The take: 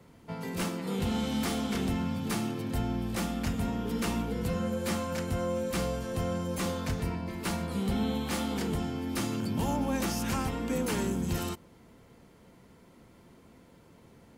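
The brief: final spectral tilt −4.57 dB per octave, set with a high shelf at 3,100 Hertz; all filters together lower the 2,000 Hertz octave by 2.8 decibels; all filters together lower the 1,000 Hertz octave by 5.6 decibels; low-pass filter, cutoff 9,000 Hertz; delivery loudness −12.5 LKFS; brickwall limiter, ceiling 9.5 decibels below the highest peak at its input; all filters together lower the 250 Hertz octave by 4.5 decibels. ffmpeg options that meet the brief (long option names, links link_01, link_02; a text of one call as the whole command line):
ffmpeg -i in.wav -af "lowpass=9000,equalizer=frequency=250:width_type=o:gain=-5.5,equalizer=frequency=1000:width_type=o:gain=-7,equalizer=frequency=2000:width_type=o:gain=-4,highshelf=frequency=3100:gain=6.5,volume=26dB,alimiter=limit=-3.5dB:level=0:latency=1" out.wav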